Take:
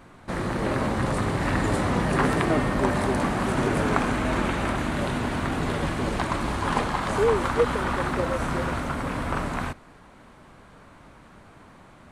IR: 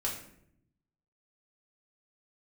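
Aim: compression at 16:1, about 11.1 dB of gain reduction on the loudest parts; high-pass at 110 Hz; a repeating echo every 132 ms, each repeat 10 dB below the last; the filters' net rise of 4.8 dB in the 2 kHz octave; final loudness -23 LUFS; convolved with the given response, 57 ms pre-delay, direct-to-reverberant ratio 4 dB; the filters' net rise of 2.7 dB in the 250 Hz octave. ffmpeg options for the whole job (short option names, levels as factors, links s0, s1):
-filter_complex "[0:a]highpass=110,equalizer=f=250:t=o:g=3.5,equalizer=f=2000:t=o:g=6,acompressor=threshold=0.0501:ratio=16,aecho=1:1:132|264|396|528:0.316|0.101|0.0324|0.0104,asplit=2[s0][s1];[1:a]atrim=start_sample=2205,adelay=57[s2];[s1][s2]afir=irnorm=-1:irlink=0,volume=0.398[s3];[s0][s3]amix=inputs=2:normalize=0,volume=1.88"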